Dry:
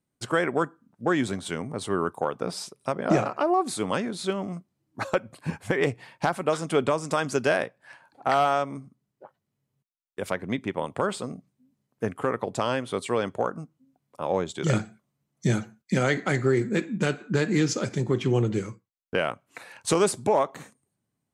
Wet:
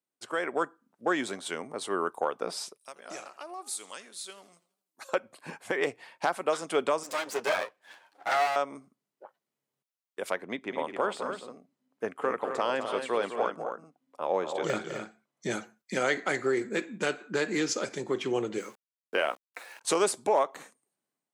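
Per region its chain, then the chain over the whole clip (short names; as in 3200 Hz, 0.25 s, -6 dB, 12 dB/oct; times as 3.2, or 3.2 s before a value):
2.77–5.09 pre-emphasis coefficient 0.9 + warbling echo 82 ms, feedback 48%, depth 152 cents, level -19.5 dB
7.03–8.56 minimum comb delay 9.7 ms + low shelf 71 Hz -9 dB
10.44–15.51 de-esser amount 75% + high shelf 6300 Hz -9.5 dB + tapped delay 0.206/0.261 s -9.5/-8 dB
18.58–19.81 HPF 190 Hz + doubler 14 ms -10 dB + sample gate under -49.5 dBFS
whole clip: HPF 380 Hz 12 dB/oct; AGC gain up to 7 dB; gain -8 dB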